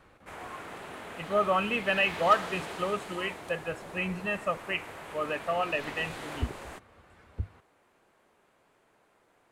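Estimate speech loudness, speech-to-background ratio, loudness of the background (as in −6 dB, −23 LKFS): −30.5 LKFS, 11.0 dB, −41.5 LKFS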